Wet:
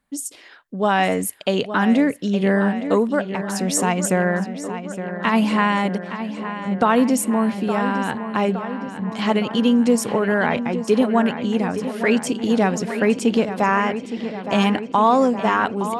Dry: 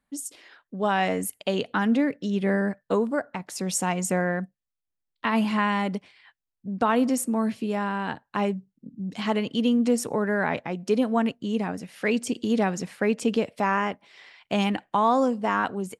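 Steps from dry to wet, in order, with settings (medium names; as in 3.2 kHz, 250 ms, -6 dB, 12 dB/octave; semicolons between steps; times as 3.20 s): filtered feedback delay 865 ms, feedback 70%, low-pass 4.4 kHz, level -10.5 dB; trim +5.5 dB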